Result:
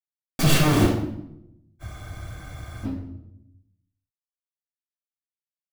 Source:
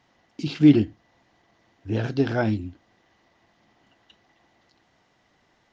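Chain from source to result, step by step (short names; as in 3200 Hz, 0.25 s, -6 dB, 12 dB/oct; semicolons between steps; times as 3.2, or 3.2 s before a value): tracing distortion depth 0.23 ms; compressor 10:1, threshold -21 dBFS, peak gain reduction 13 dB; companded quantiser 2-bit; reverb RT60 0.80 s, pre-delay 3 ms, DRR -1.5 dB; spectral freeze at 1.84, 1.01 s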